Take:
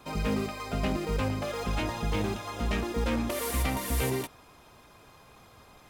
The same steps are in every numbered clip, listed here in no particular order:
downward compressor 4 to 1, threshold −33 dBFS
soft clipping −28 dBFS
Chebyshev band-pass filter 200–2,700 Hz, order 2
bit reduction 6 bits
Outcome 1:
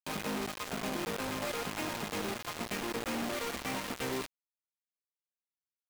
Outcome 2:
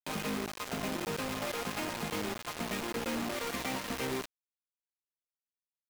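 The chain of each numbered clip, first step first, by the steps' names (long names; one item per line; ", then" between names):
soft clipping, then Chebyshev band-pass filter, then downward compressor, then bit reduction
Chebyshev band-pass filter, then downward compressor, then soft clipping, then bit reduction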